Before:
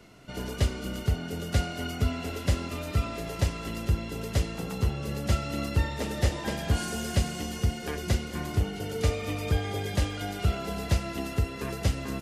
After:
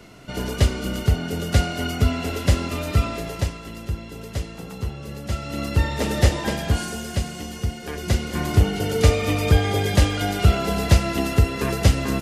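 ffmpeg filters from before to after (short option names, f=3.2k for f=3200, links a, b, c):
-af "volume=27dB,afade=t=out:st=3.02:d=0.6:silence=0.354813,afade=t=in:st=5.3:d=0.86:silence=0.298538,afade=t=out:st=6.16:d=0.88:silence=0.398107,afade=t=in:st=7.87:d=0.73:silence=0.354813"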